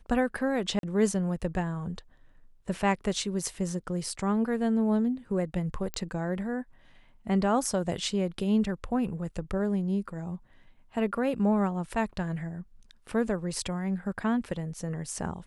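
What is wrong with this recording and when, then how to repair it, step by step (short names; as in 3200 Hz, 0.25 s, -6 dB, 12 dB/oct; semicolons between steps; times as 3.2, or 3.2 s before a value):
0.79–0.83 gap 42 ms
5.94 pop -16 dBFS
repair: de-click; interpolate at 0.79, 42 ms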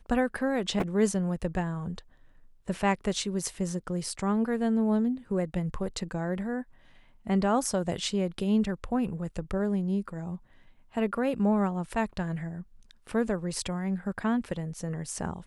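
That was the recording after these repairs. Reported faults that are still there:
5.94 pop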